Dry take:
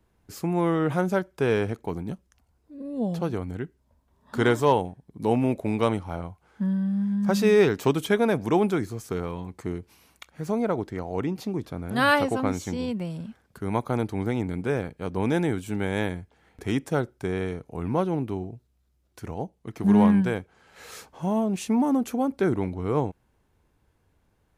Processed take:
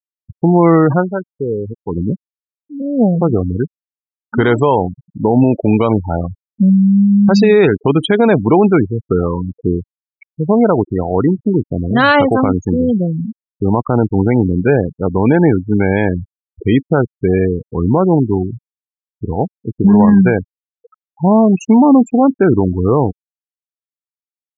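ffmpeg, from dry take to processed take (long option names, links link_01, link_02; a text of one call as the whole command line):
ffmpeg -i in.wav -filter_complex "[0:a]asplit=3[link_01][link_02][link_03];[link_01]atrim=end=1.07,asetpts=PTS-STARTPTS,afade=type=out:start_time=0.92:duration=0.15:silence=0.281838[link_04];[link_02]atrim=start=1.07:end=1.85,asetpts=PTS-STARTPTS,volume=-11dB[link_05];[link_03]atrim=start=1.85,asetpts=PTS-STARTPTS,afade=type=in:duration=0.15:silence=0.281838[link_06];[link_04][link_05][link_06]concat=n=3:v=0:a=1,afftfilt=real='re*gte(hypot(re,im),0.0447)':imag='im*gte(hypot(re,im),0.0447)':win_size=1024:overlap=0.75,alimiter=level_in=16.5dB:limit=-1dB:release=50:level=0:latency=1,volume=-1dB" out.wav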